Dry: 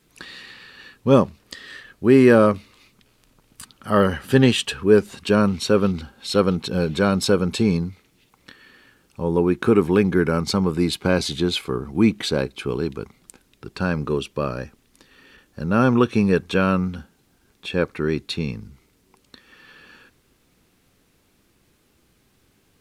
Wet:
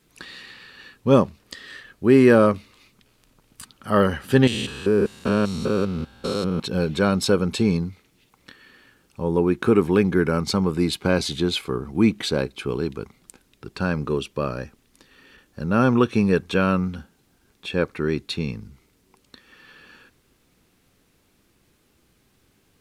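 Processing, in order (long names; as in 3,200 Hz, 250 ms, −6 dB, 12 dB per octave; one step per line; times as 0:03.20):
0:04.47–0:06.60: spectrum averaged block by block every 200 ms
level −1 dB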